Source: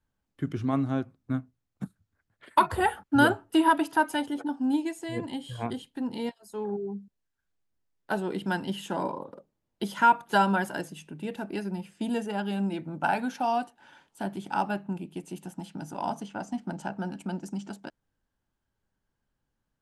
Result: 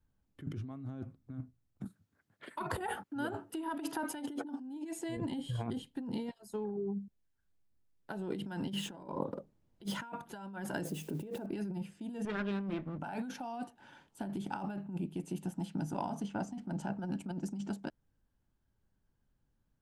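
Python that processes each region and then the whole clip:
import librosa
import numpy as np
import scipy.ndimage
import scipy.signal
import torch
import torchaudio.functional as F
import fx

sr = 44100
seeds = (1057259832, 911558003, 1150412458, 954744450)

y = fx.chain(x, sr, fx.highpass(hz=180.0, slope=12),
    fx.over_compress(threshold_db=-28.0, ratio=-1.0), at=(1.84, 5.17))
y = fx.chain(y, sr, fx.median_filter(points=3),
    fx.over_compress(threshold_db=-38.0, ratio=-0.5), at=(8.73, 9.97))
y = fx.chain(y, sr, fx.crossing_spikes(level_db=-41.0),
    fx.peak_eq(hz=470.0, db=12.5, octaves=1.7), at=(10.85, 11.46))
y = fx.chain(y, sr, fx.lower_of_two(delay_ms=0.57),
    fx.lowpass(hz=2500.0, slope=12),
    fx.tilt_eq(slope=2.5), at=(12.25, 12.99))
y = fx.low_shelf(y, sr, hz=350.0, db=9.5)
y = fx.over_compress(y, sr, threshold_db=-30.0, ratio=-1.0)
y = F.gain(torch.from_numpy(y), -8.5).numpy()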